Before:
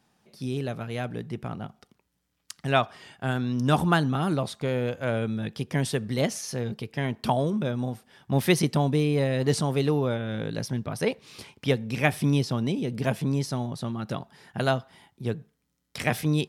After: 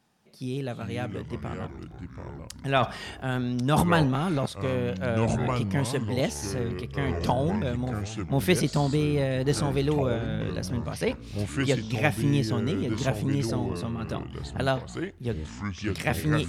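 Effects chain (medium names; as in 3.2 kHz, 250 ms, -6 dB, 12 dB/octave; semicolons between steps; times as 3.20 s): 2.77–4.46 s: transient shaper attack -1 dB, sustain +11 dB; ever faster or slower copies 250 ms, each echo -5 st, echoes 3, each echo -6 dB; trim -1.5 dB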